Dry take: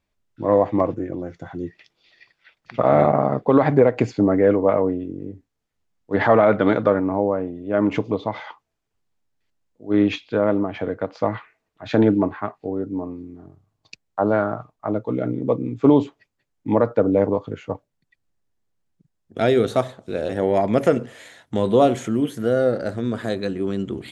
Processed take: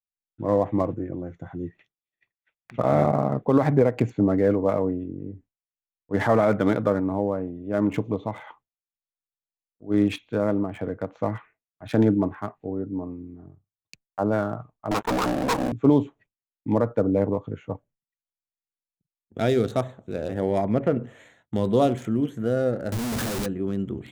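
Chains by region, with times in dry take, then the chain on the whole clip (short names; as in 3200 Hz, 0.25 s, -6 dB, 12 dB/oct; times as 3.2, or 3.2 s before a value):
14.91–15.72 minimum comb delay 0.78 ms + BPF 500–2100 Hz + sample leveller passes 5
20.64–21.04 air absorption 380 m + mismatched tape noise reduction encoder only
22.92–23.46 G.711 law mismatch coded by mu + Schmitt trigger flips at -37 dBFS
whole clip: Wiener smoothing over 9 samples; expander -44 dBFS; tone controls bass +6 dB, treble +8 dB; gain -5.5 dB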